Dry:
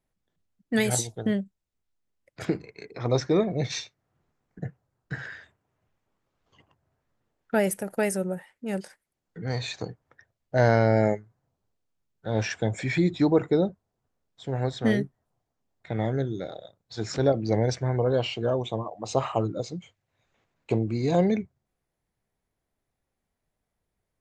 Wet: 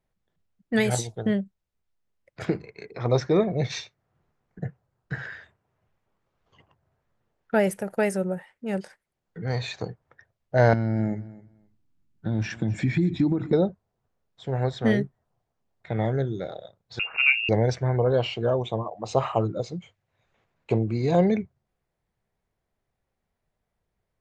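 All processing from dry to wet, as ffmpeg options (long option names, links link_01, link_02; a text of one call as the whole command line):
ffmpeg -i in.wav -filter_complex "[0:a]asettb=1/sr,asplit=3[link_01][link_02][link_03];[link_01]atrim=end=10.734[link_04];[link_02]atrim=start=10.73:end=13.53,asetpts=PTS-STARTPTS,afade=type=in:duration=0.004:curve=qsin,afade=type=out:start_time=2.796:duration=0.004:curve=qsin,acompressor=threshold=-30dB:ratio=5:attack=3.2:release=140:knee=1:detection=peak,lowshelf=frequency=370:width_type=q:width=3:gain=8,aecho=1:1:260|520:0.112|0.0191,atrim=end_sample=123480[link_05];[link_03]atrim=start=13.526[link_06];[link_04][link_05]acrossfade=duration=0.004:curve1=hsin:curve2=qsin[link_07];[link_07][link_06]acrossfade=duration=0.004:curve1=qsin:curve2=hsin,asettb=1/sr,asplit=3[link_08][link_09][link_10];[link_08]atrim=end=16.994[link_11];[link_09]atrim=start=16.99:end=17.49,asetpts=PTS-STARTPTS,afade=type=in:duration=0.004:curve=qsin,afade=type=out:start_time=0.496:duration=0.004:curve=qsin,equalizer=frequency=62:width_type=o:width=0.89:gain=12.5,lowpass=frequency=2500:width_type=q:width=0.5098,lowpass=frequency=2500:width_type=q:width=0.6013,lowpass=frequency=2500:width_type=q:width=0.9,lowpass=frequency=2500:width_type=q:width=2.563,afreqshift=-2900[link_12];[link_10]atrim=start=17.486[link_13];[link_11][link_12]acrossfade=duration=0.004:curve1=hsin:curve2=qsin[link_14];[link_14][link_13]acrossfade=duration=0.004:curve1=qsin:curve2=hsin,lowpass=frequency=3500:poles=1,equalizer=frequency=280:width_type=o:width=0.39:gain=-5.5,volume=2.5dB" out.wav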